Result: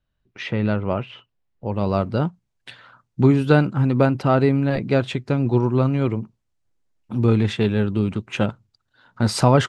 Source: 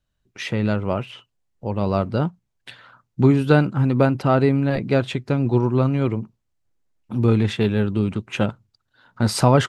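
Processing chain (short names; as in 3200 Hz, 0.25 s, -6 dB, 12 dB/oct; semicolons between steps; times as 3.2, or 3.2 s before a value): LPF 3700 Hz 12 dB/oct, from 1.74 s 10000 Hz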